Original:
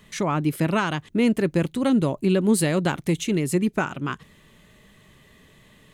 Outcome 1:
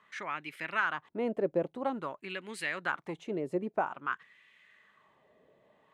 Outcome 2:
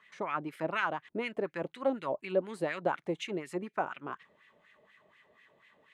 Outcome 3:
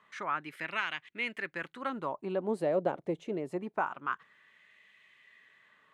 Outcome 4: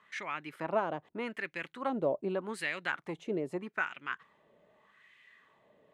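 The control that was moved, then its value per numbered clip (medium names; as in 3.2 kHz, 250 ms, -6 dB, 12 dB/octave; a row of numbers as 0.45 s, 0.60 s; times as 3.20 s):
wah-wah, rate: 0.5 Hz, 4.1 Hz, 0.25 Hz, 0.82 Hz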